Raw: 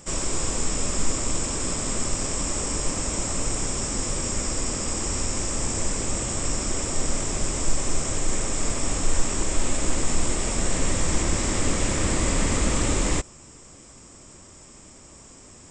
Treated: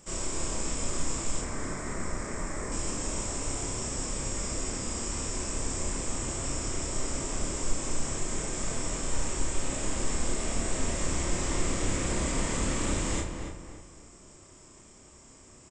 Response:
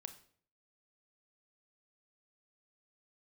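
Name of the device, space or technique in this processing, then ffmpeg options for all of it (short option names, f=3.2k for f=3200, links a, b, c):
bathroom: -filter_complex "[0:a]asettb=1/sr,asplit=3[a][b][c];[a]atrim=end=1.414[d];[b]atrim=start=1.41:end=2.72,asetpts=PTS-STARTPTS,afade=t=in:d=0.004:c=qsin,afade=t=out:st=1.306:d=0.004:c=qsin,highshelf=f=2.4k:t=q:w=3:g=-6.5[e];[c]atrim=start=2.716[f];[d][e]acrossfade=d=0.004:c1=hsin:c2=qsin[g];[g][f]acrossfade=d=0.004:c1=qsin:c2=hsin[h];[1:a]atrim=start_sample=2205[i];[h][i]afir=irnorm=-1:irlink=0,asplit=2[j][k];[k]adelay=30,volume=-4dB[l];[j][l]amix=inputs=2:normalize=0,asplit=2[m][n];[n]adelay=282,lowpass=f=2.5k:p=1,volume=-6dB,asplit=2[o][p];[p]adelay=282,lowpass=f=2.5k:p=1,volume=0.41,asplit=2[q][r];[r]adelay=282,lowpass=f=2.5k:p=1,volume=0.41,asplit=2[s][t];[t]adelay=282,lowpass=f=2.5k:p=1,volume=0.41,asplit=2[u][v];[v]adelay=282,lowpass=f=2.5k:p=1,volume=0.41[w];[m][o][q][s][u][w]amix=inputs=6:normalize=0,volume=-3dB"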